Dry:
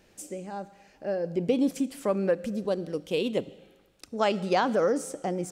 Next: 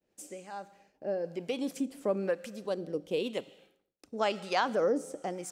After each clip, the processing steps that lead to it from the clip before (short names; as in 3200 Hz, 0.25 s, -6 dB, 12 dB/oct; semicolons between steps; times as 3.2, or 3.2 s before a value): harmonic tremolo 1 Hz, depth 70%, crossover 750 Hz; low shelf 140 Hz -11.5 dB; expander -56 dBFS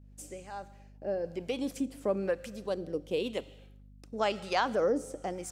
hum 50 Hz, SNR 20 dB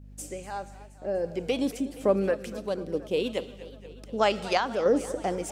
random-step tremolo; warbling echo 0.239 s, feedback 70%, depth 162 cents, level -17 dB; gain +7 dB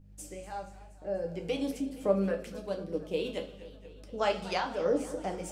reverb RT60 0.40 s, pre-delay 6 ms, DRR 3.5 dB; gain -7 dB